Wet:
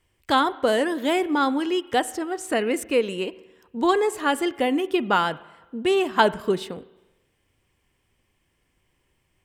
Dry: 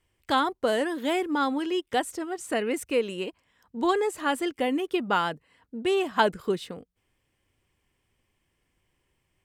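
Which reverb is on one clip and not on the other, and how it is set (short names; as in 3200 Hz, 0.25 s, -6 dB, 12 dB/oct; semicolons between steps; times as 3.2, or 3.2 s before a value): spring tank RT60 1.1 s, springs 37/45 ms, chirp 75 ms, DRR 17.5 dB; gain +4 dB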